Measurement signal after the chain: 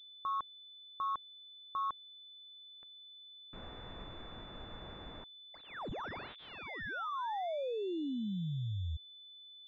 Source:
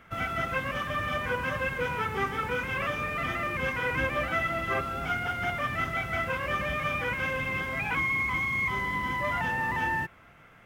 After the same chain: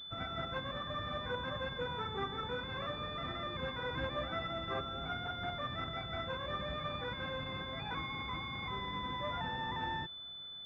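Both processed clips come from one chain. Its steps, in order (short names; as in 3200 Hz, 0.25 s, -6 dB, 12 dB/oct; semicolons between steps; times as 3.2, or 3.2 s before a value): pulse-width modulation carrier 3500 Hz; gain -7.5 dB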